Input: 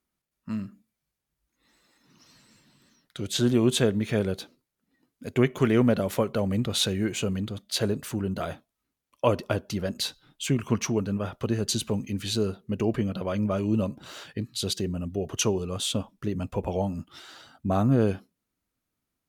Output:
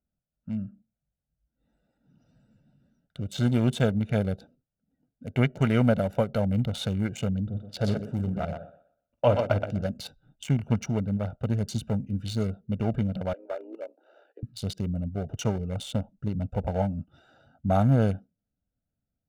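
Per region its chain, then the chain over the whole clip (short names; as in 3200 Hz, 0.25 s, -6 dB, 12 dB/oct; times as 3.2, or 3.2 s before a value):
7.41–9.86 LPF 2700 Hz 6 dB/oct + doubler 49 ms -11 dB + thinning echo 0.123 s, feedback 29%, high-pass 320 Hz, level -4 dB
13.33–14.43 steep high-pass 320 Hz 72 dB/oct + AM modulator 65 Hz, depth 25% + tape spacing loss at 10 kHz 25 dB
whole clip: Wiener smoothing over 41 samples; comb 1.4 ms, depth 65%; de-esser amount 80%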